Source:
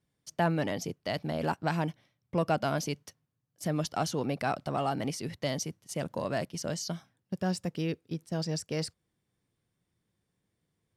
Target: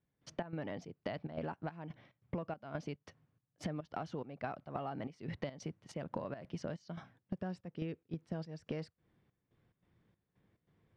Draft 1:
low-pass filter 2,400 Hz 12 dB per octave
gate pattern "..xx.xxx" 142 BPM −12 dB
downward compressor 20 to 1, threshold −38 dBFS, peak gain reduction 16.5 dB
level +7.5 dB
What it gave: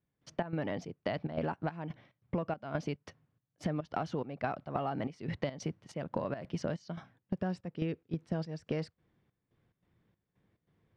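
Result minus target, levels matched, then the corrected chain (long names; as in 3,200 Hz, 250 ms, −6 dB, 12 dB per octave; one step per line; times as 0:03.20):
downward compressor: peak gain reduction −6 dB
low-pass filter 2,400 Hz 12 dB per octave
gate pattern "..xx.xxx" 142 BPM −12 dB
downward compressor 20 to 1, threshold −44.5 dBFS, peak gain reduction 22.5 dB
level +7.5 dB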